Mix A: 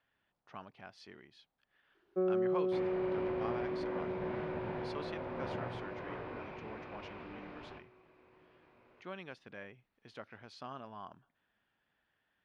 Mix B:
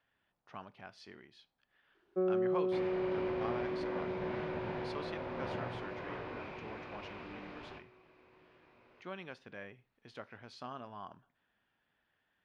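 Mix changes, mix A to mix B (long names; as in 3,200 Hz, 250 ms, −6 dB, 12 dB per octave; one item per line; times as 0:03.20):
speech: send on
second sound: remove low-pass filter 2,300 Hz 6 dB per octave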